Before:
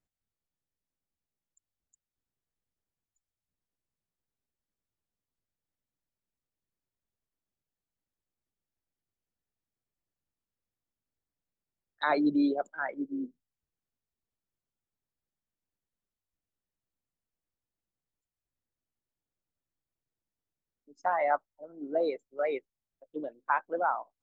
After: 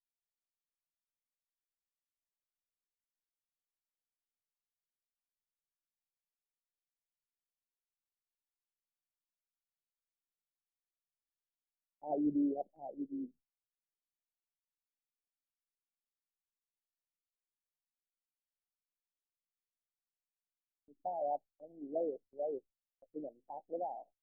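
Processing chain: steep low-pass 810 Hz 96 dB/oct; gate with hold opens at -54 dBFS; low shelf 120 Hz +9.5 dB; gain -8 dB

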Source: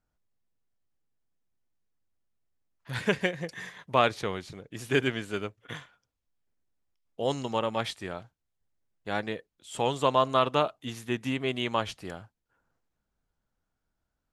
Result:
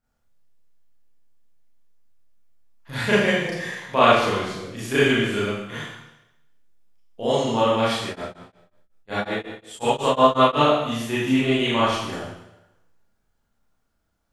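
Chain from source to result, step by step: Schroeder reverb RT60 0.87 s, combs from 27 ms, DRR -9.5 dB; 8.07–10.62 beating tremolo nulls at 5.5 Hz; gain -1 dB

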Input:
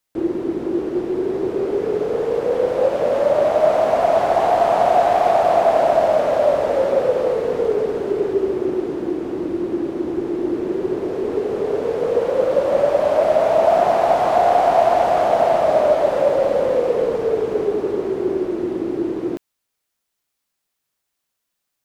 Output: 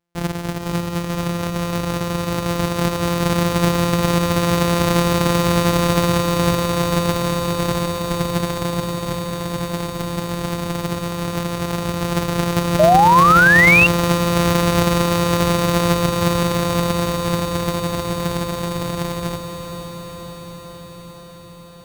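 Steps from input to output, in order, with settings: sample sorter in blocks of 256 samples; diffused feedback echo 0.5 s, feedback 73%, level -8 dB; painted sound rise, 12.79–13.87, 600–2800 Hz -9 dBFS; gain -2.5 dB

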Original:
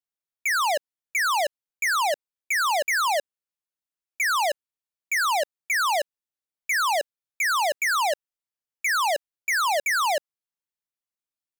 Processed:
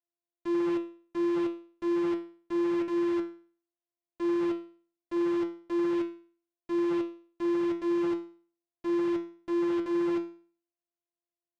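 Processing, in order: sample sorter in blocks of 128 samples; air absorption 98 m; resonator 170 Hz, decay 0.43 s, harmonics all, mix 90%; gain +1.5 dB

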